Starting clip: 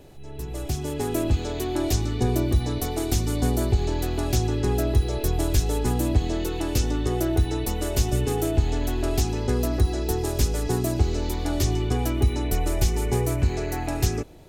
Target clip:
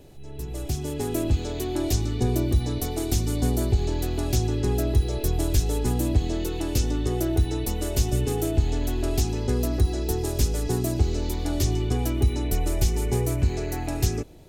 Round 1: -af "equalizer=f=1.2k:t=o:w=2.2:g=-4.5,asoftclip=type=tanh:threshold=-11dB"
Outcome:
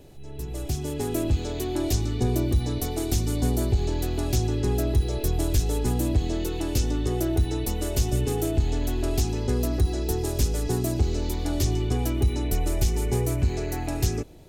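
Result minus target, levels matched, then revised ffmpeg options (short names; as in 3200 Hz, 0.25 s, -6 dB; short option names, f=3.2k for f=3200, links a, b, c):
soft clip: distortion +14 dB
-af "equalizer=f=1.2k:t=o:w=2.2:g=-4.5,asoftclip=type=tanh:threshold=-3dB"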